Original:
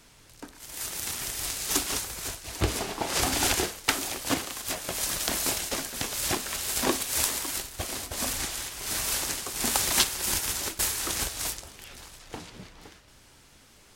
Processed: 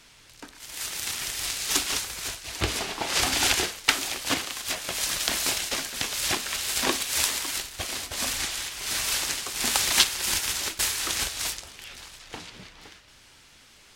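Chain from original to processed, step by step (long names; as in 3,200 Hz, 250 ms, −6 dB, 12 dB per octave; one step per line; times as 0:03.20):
parametric band 3,000 Hz +8.5 dB 2.8 octaves
level −3 dB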